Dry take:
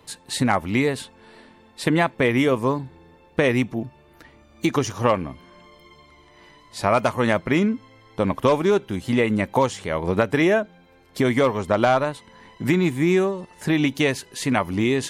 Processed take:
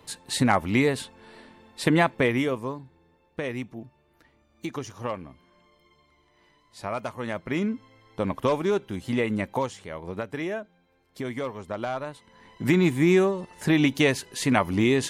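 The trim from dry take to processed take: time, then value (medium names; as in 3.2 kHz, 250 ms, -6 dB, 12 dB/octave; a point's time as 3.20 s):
2.14 s -1 dB
2.77 s -12 dB
7.27 s -12 dB
7.70 s -5.5 dB
9.40 s -5.5 dB
10.01 s -12.5 dB
11.92 s -12.5 dB
12.78 s -0.5 dB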